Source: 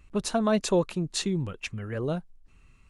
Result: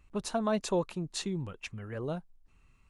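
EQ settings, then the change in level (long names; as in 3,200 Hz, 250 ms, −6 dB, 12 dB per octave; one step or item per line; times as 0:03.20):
parametric band 890 Hz +4 dB 0.82 octaves
−6.5 dB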